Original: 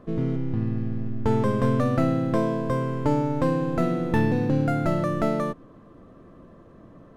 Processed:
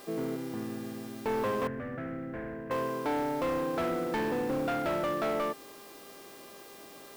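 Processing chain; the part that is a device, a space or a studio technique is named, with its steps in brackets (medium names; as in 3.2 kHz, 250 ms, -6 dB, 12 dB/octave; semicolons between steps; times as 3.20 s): aircraft radio (band-pass 370–2300 Hz; hard clipper -27 dBFS, distortion -9 dB; mains buzz 400 Hz, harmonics 14, -54 dBFS -4 dB/octave; white noise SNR 22 dB); 1.67–2.71 s: FFT filter 140 Hz 0 dB, 1.1 kHz -16 dB, 1.7 kHz -2 dB, 4 kHz -26 dB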